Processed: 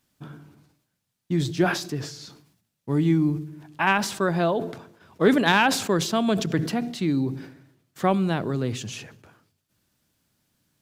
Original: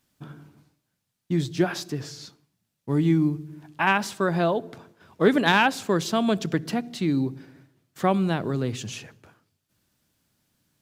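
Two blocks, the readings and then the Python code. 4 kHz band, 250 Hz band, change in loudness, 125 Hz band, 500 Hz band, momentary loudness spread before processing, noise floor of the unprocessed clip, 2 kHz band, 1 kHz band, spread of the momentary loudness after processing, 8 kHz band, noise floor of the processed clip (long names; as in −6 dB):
+1.5 dB, +0.5 dB, +0.5 dB, +0.5 dB, +0.5 dB, 15 LU, −79 dBFS, +0.5 dB, +0.5 dB, 17 LU, +4.0 dB, −78 dBFS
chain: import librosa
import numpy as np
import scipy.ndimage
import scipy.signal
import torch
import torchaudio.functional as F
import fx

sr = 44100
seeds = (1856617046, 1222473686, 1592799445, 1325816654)

y = fx.sustainer(x, sr, db_per_s=84.0)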